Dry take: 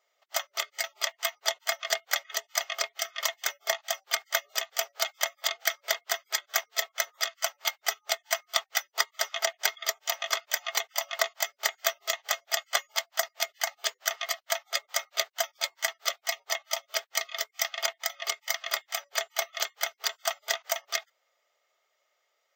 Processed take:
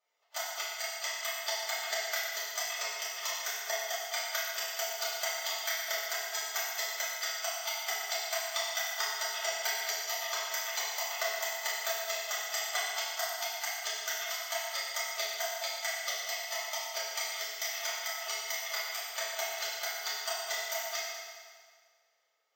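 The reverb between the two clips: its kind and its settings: FDN reverb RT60 1.8 s, low-frequency decay 1.05×, high-frequency decay 0.9×, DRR -9.5 dB; gain -13 dB

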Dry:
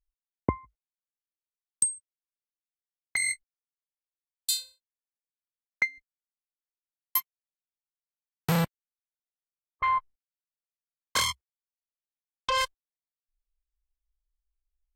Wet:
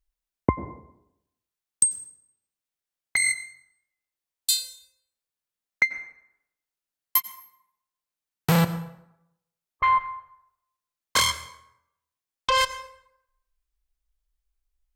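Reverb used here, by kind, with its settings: plate-style reverb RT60 0.81 s, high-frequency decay 0.65×, pre-delay 80 ms, DRR 13.5 dB; gain +5 dB

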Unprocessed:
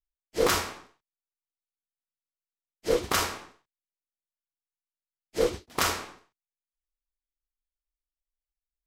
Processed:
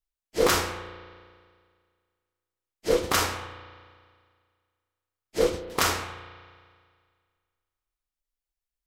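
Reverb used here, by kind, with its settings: spring tank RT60 1.9 s, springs 34 ms, chirp 25 ms, DRR 10.5 dB; gain +2 dB

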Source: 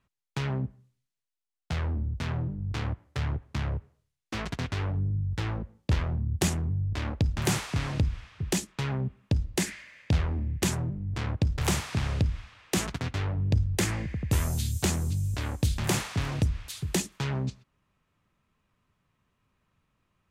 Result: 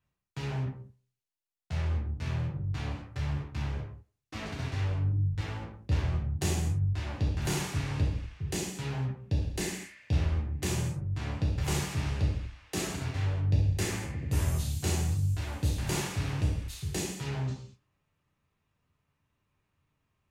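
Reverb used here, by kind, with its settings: non-linear reverb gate 0.27 s falling, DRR -6.5 dB; gain -11 dB

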